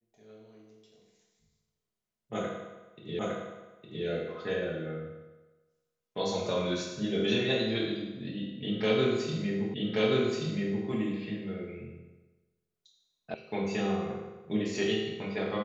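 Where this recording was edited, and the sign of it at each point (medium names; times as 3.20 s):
3.19 s: repeat of the last 0.86 s
9.74 s: repeat of the last 1.13 s
13.34 s: sound stops dead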